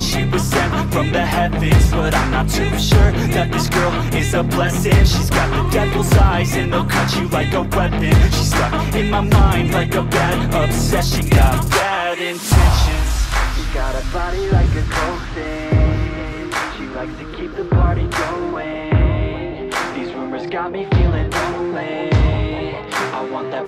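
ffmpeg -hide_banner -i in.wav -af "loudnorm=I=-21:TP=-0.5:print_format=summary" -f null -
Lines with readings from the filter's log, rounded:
Input Integrated:    -17.5 LUFS
Input True Peak:      -2.2 dBTP
Input LRA:             4.8 LU
Input Threshold:     -27.6 LUFS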